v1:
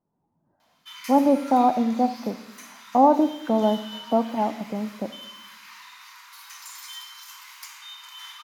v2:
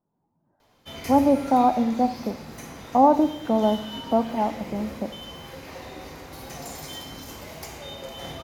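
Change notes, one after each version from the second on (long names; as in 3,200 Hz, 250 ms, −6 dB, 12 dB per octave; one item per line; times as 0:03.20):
background: remove Chebyshev high-pass filter 960 Hz, order 6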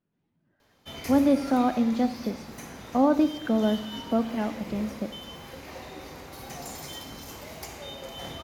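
speech: remove low-pass with resonance 890 Hz, resonance Q 4.1
background: send −11.5 dB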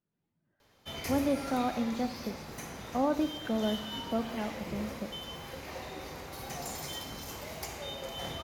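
speech −6.0 dB
master: add parametric band 270 Hz −3.5 dB 0.53 octaves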